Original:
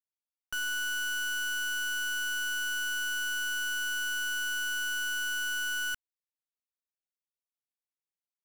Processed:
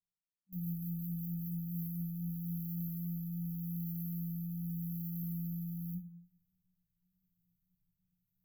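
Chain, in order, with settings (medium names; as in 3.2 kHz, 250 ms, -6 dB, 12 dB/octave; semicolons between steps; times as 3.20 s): frequency shift +170 Hz; tilt EQ -4.5 dB/octave; reverse; upward compressor, threshold -44 dBFS; reverse; sample-rate reducer 5.3 kHz, jitter 0%; FFT band-reject 190–12000 Hz; rotary cabinet horn 5.5 Hz, later 0.85 Hz, at 1.10 s; on a send: reverberation RT60 0.45 s, pre-delay 3 ms, DRR 5 dB; on the sum: trim +2.5 dB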